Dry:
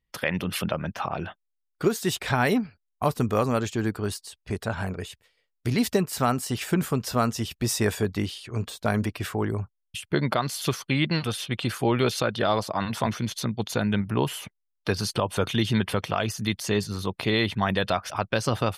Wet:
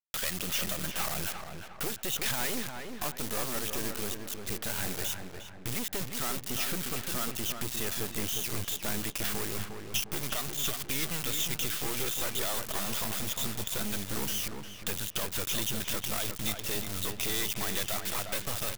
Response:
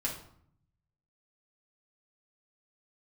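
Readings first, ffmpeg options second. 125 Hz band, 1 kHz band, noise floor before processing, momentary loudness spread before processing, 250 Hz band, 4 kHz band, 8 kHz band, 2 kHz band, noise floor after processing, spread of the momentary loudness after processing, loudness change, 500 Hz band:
−13.0 dB, −11.0 dB, −78 dBFS, 8 LU, −13.0 dB, −2.0 dB, +3.0 dB, −6.0 dB, −45 dBFS, 6 LU, −5.0 dB, −12.5 dB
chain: -filter_complex "[0:a]acompressor=threshold=-33dB:ratio=3,aresample=8000,aresample=44100,aresample=16000,asoftclip=type=tanh:threshold=-30.5dB,aresample=44100,acrusher=bits=5:dc=4:mix=0:aa=0.000001,asplit=2[link_01][link_02];[link_02]adelay=355,lowpass=frequency=2200:poles=1,volume=-5.5dB,asplit=2[link_03][link_04];[link_04]adelay=355,lowpass=frequency=2200:poles=1,volume=0.48,asplit=2[link_05][link_06];[link_06]adelay=355,lowpass=frequency=2200:poles=1,volume=0.48,asplit=2[link_07][link_08];[link_08]adelay=355,lowpass=frequency=2200:poles=1,volume=0.48,asplit=2[link_09][link_10];[link_10]adelay=355,lowpass=frequency=2200:poles=1,volume=0.48,asplit=2[link_11][link_12];[link_12]adelay=355,lowpass=frequency=2200:poles=1,volume=0.48[link_13];[link_03][link_05][link_07][link_09][link_11][link_13]amix=inputs=6:normalize=0[link_14];[link_01][link_14]amix=inputs=2:normalize=0,crystalizer=i=5.5:c=0,volume=3dB"

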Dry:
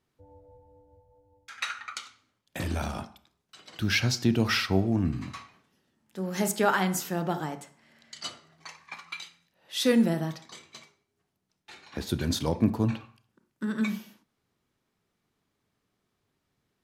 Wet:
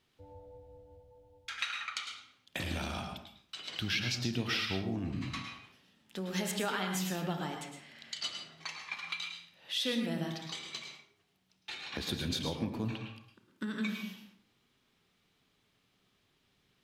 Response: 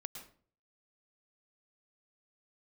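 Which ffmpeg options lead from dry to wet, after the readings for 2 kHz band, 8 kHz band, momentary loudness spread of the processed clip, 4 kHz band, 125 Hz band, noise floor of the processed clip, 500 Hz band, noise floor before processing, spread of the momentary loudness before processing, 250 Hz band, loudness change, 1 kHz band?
−4.5 dB, −6.0 dB, 17 LU, −1.0 dB, −8.5 dB, −74 dBFS, −9.5 dB, −79 dBFS, 21 LU, −9.0 dB, −8.0 dB, −8.0 dB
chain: -filter_complex "[0:a]equalizer=frequency=3200:width=0.98:gain=10,acompressor=threshold=-39dB:ratio=2.5[link_01];[1:a]atrim=start_sample=2205[link_02];[link_01][link_02]afir=irnorm=-1:irlink=0,volume=5dB"

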